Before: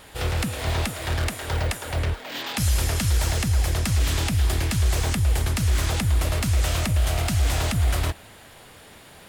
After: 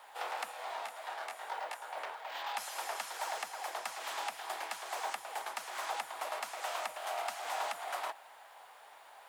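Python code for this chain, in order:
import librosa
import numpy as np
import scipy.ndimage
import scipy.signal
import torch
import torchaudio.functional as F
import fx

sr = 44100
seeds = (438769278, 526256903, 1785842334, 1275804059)

y = fx.ladder_highpass(x, sr, hz=700.0, resonance_pct=50)
y = fx.high_shelf(y, sr, hz=2100.0, db=-9.5)
y = fx.quant_dither(y, sr, seeds[0], bits=12, dither='none')
y = fx.detune_double(y, sr, cents=fx.line((0.51, 17.0), (1.95, 36.0)), at=(0.51, 1.95), fade=0.02)
y = y * 10.0 ** (3.0 / 20.0)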